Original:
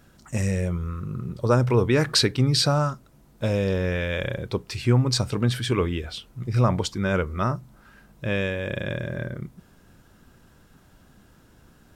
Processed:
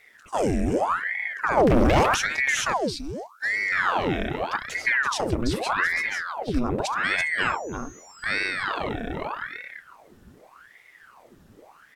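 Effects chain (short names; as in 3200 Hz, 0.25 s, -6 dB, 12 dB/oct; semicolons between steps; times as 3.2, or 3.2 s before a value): limiter -14.5 dBFS, peak gain reduction 8 dB; bell 67 Hz +12.5 dB 0.8 oct; on a send: echo 0.336 s -6.5 dB; 1.57–2.15 on the sum: sample leveller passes 3; 2.73–3.72 spectral gain 210–1900 Hz -21 dB; 7.03–8.62 whine 6400 Hz -45 dBFS; ring modulator with a swept carrier 1100 Hz, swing 90%, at 0.83 Hz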